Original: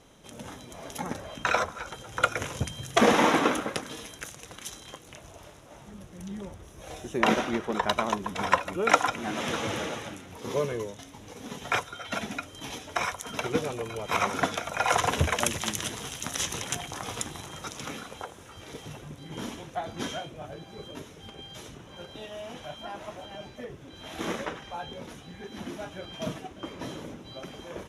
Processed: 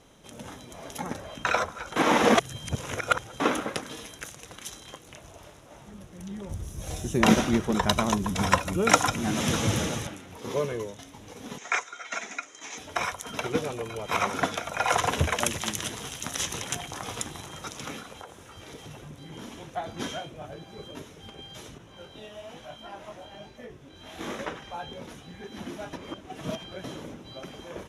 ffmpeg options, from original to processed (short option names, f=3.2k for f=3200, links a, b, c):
-filter_complex "[0:a]asettb=1/sr,asplit=3[a][b][c];[a]atrim=end=6.494[d];[b]atrim=start=6.49:end=10.07,asetpts=PTS-STARTPTS,afade=t=in:d=0.004:c=qsin,afade=t=out:st=3.576:d=0.004:c=qsin,bass=f=250:g=13,treble=f=4k:g=10[e];[c]atrim=start=10.066[f];[d][e]acrossfade=d=0.004:c1=hsin:c2=qsin[g];[g][f]acrossfade=d=0.004:c1=qsin:c2=hsin,asettb=1/sr,asplit=3[h][i][j];[h]atrim=end=11.584[k];[i]atrim=start=11.58:end=12.78,asetpts=PTS-STARTPTS,afade=t=in:d=0.004:c=qsin,afade=t=out:st=1.196:d=0.004:c=qsin,highpass=490,equalizer=f=560:t=q:w=4:g=-6,equalizer=f=850:t=q:w=4:g=-4,equalizer=f=2.1k:t=q:w=4:g=6,equalizer=f=3.1k:t=q:w=4:g=-7,equalizer=f=4.4k:t=q:w=4:g=-4,equalizer=f=6.7k:t=q:w=4:g=9,lowpass=f=7.8k:w=0.5412,lowpass=f=7.8k:w=1.3066[l];[j]atrim=start=12.776[m];[k][l]acrossfade=d=0.004:c1=hsin:c2=qsin[n];[n][m]acrossfade=d=0.004:c1=qsin:c2=hsin,asettb=1/sr,asplit=3[o][p][q];[o]atrim=end=18.004[r];[p]atrim=start=18:end=19.61,asetpts=PTS-STARTPTS,afade=t=in:d=0.004:c=qsin,afade=t=out:st=1.606:d=0.004:c=qsin,acompressor=threshold=-39dB:ratio=2.5:attack=3.2:release=140:knee=1:detection=peak[s];[q]atrim=start=19.606[t];[r][s]acrossfade=d=0.004:c1=hsin:c2=qsin[u];[u][t]acrossfade=d=0.004:c1=qsin:c2=hsin,asettb=1/sr,asplit=3[v][w][x];[v]atrim=end=21.784[y];[w]atrim=start=21.78:end=24.39,asetpts=PTS-STARTPTS,afade=t=in:d=0.004:c=qsin,afade=t=out:st=2.606:d=0.004:c=qsin,flanger=delay=17.5:depth=6.3:speed=1.1[z];[x]atrim=start=24.386[aa];[y][z]acrossfade=d=0.004:c1=hsin:c2=qsin[ab];[ab][aa]acrossfade=d=0.004:c1=qsin:c2=hsin,asplit=5[ac][ad][ae][af][ag];[ac]atrim=end=1.962[ah];[ad]atrim=start=1.958:end=3.402,asetpts=PTS-STARTPTS,areverse[ai];[ae]atrim=start=3.398:end=25.932[aj];[af]atrim=start=25.928:end=26.842,asetpts=PTS-STARTPTS,areverse[ak];[ag]atrim=start=26.838[al];[ah][ai]acrossfade=d=0.004:c1=hsin:c2=hsin[am];[am][aj]acrossfade=d=0.004:c1=hsin:c2=hsin[an];[an][ak]acrossfade=d=0.004:c1=hsin:c2=hsin[ao];[ao][al]acrossfade=d=0.004:c1=hsin:c2=hsin"